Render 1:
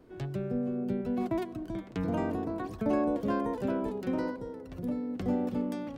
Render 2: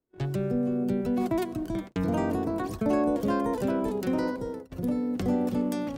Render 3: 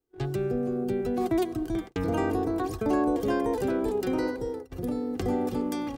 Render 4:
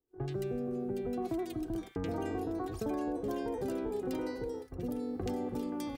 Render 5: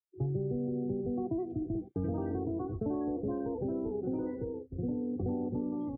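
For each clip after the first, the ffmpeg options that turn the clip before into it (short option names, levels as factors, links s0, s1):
-filter_complex "[0:a]agate=range=0.0178:threshold=0.00794:ratio=16:detection=peak,asplit=2[s0][s1];[s1]alimiter=level_in=1.68:limit=0.0631:level=0:latency=1,volume=0.596,volume=1.06[s2];[s0][s2]amix=inputs=2:normalize=0,adynamicequalizer=threshold=0.00158:dfrequency=4800:dqfactor=0.7:tfrequency=4800:tqfactor=0.7:attack=5:release=100:ratio=0.375:range=4:mode=boostabove:tftype=highshelf"
-af "aecho=1:1:2.5:0.58"
-filter_complex "[0:a]acompressor=threshold=0.0355:ratio=3,acrossover=split=1500[s0][s1];[s1]adelay=80[s2];[s0][s2]amix=inputs=2:normalize=0,volume=0.631"
-af "highpass=110,lowpass=6900,aemphasis=mode=reproduction:type=riaa,afftdn=nr=31:nf=-41,volume=0.668"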